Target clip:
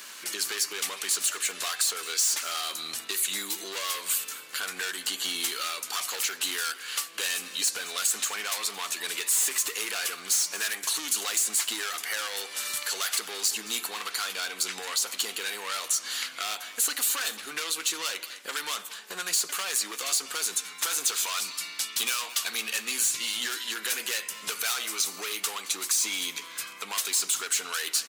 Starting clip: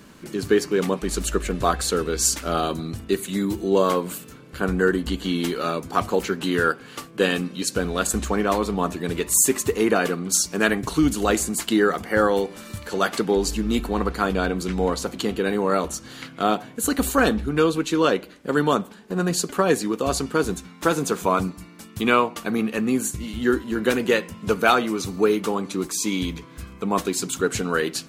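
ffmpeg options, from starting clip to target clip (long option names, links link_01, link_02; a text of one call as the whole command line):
ffmpeg -i in.wav -filter_complex "[0:a]asettb=1/sr,asplit=3[link_01][link_02][link_03];[link_01]atrim=end=21.064[link_04];[link_02]atrim=start=21.06:end=23.74,asetpts=PTS-STARTPTS,afade=type=in:duration=0.004:curve=qsin,afade=type=out:start_time=2.676:duration=0.004:curve=qsin,equalizer=frequency=3900:width_type=o:width=1.6:gain=8.5[link_05];[link_03]atrim=start=23.736[link_06];[link_04][link_05]acrossfade=duration=0.004:curve1=hsin:curve2=qsin[link_07];[link_07][link_06]acrossfade=duration=0.004:curve1=qsin:curve2=hsin,asplit=2[link_08][link_09];[link_09]highpass=frequency=720:poles=1,volume=27dB,asoftclip=type=tanh:threshold=-0.5dB[link_10];[link_08][link_10]amix=inputs=2:normalize=0,lowpass=frequency=3100:poles=1,volume=-6dB,aderivative,acrossover=split=1600|5500[link_11][link_12][link_13];[link_11]acompressor=threshold=-41dB:ratio=4[link_14];[link_12]acompressor=threshold=-33dB:ratio=4[link_15];[link_13]acompressor=threshold=-26dB:ratio=4[link_16];[link_14][link_15][link_16]amix=inputs=3:normalize=0,aecho=1:1:221:0.133" out.wav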